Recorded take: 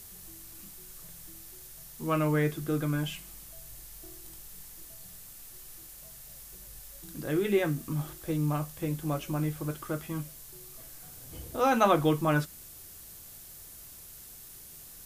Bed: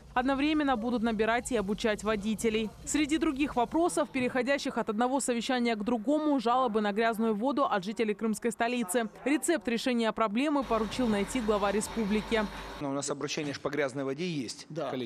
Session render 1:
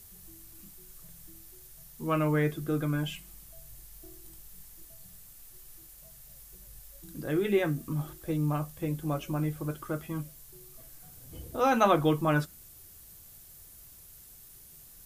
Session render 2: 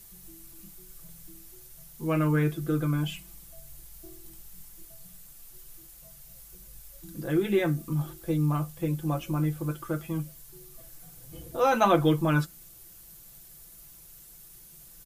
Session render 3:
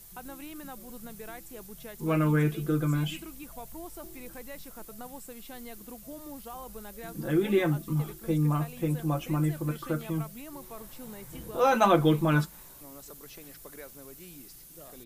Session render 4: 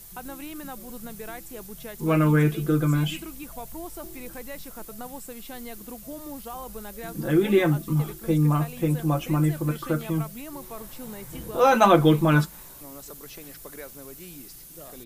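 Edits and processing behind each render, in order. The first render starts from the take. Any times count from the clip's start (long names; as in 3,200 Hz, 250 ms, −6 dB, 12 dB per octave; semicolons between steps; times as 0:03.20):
broadband denoise 6 dB, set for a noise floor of −49 dBFS
comb filter 5.9 ms
mix in bed −16.5 dB
level +5 dB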